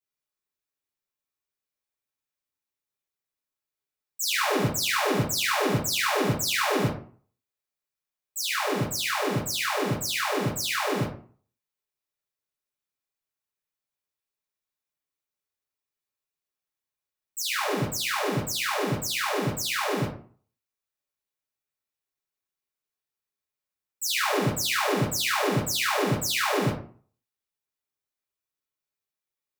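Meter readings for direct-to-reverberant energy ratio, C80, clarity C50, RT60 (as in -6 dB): -11.0 dB, 11.0 dB, 6.5 dB, 0.45 s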